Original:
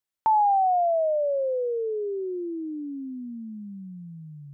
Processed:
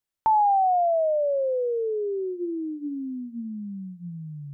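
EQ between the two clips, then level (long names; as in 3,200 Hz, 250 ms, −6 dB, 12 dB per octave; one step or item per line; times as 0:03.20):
low-shelf EQ 220 Hz +7.5 dB
mains-hum notches 60/120/180/240/300/360 Hz
0.0 dB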